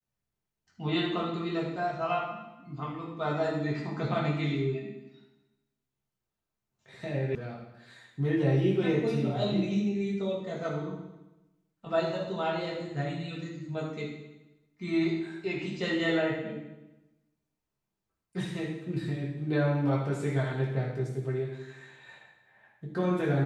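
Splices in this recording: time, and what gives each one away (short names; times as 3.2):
7.35 sound cut off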